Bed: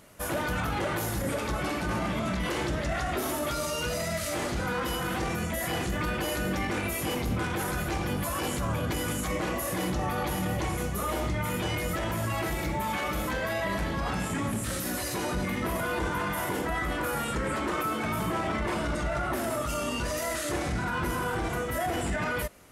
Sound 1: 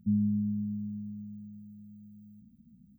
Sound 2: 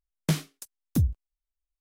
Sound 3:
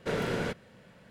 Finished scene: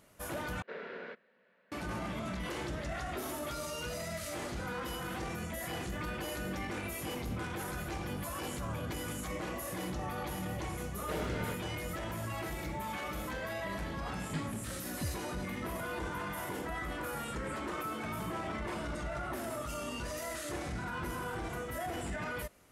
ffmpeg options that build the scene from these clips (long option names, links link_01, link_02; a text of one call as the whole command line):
ffmpeg -i bed.wav -i cue0.wav -i cue1.wav -i cue2.wav -filter_complex "[3:a]asplit=2[link_01][link_02];[0:a]volume=-8.5dB[link_03];[link_01]highpass=frequency=250:width=0.5412,highpass=frequency=250:width=1.3066,equalizer=frequency=300:width_type=q:width=4:gain=-10,equalizer=frequency=810:width_type=q:width=4:gain=-5,equalizer=frequency=1700:width_type=q:width=4:gain=4,equalizer=frequency=3200:width_type=q:width=4:gain=-6,lowpass=frequency=3600:width=0.5412,lowpass=frequency=3600:width=1.3066[link_04];[2:a]aresample=11025,aresample=44100[link_05];[link_03]asplit=2[link_06][link_07];[link_06]atrim=end=0.624[link_08];[link_04]atrim=end=1.1,asetpts=PTS-STARTPTS,volume=-10.5dB[link_09];[link_07]atrim=start=1.716[link_10];[link_02]atrim=end=1.1,asetpts=PTS-STARTPTS,volume=-8dB,afade=type=in:duration=0.004:curve=hsin,afade=type=out:start_time=1.096:duration=0.004:curve=hsin,adelay=11020[link_11];[link_05]atrim=end=1.8,asetpts=PTS-STARTPTS,volume=-14.5dB,afade=type=in:duration=0.004:curve=hsin,afade=type=out:start_time=1.796:duration=0.004:curve=hsin,adelay=14050[link_12];[link_08][link_09]acrossfade=duration=0.004:curve1=hsin:curve2=hsin[link_13];[link_13][link_10]acrossfade=duration=0.004:curve1=hsin:curve2=hsin[link_14];[link_14][link_11][link_12]amix=inputs=3:normalize=0" out.wav